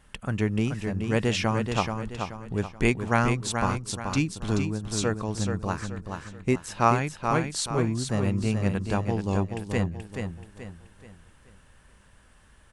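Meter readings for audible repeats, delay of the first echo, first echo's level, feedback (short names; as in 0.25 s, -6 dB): 4, 0.43 s, -6.0 dB, 38%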